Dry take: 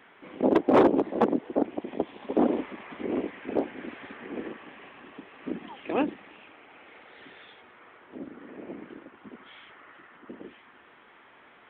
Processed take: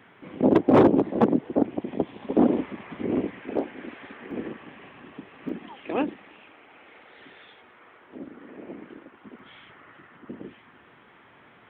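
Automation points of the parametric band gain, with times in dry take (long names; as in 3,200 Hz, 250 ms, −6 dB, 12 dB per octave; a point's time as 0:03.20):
parametric band 120 Hz 1.8 octaves
+12.5 dB
from 0:03.42 +0.5 dB
from 0:04.31 +10 dB
from 0:05.49 +1 dB
from 0:09.39 +12 dB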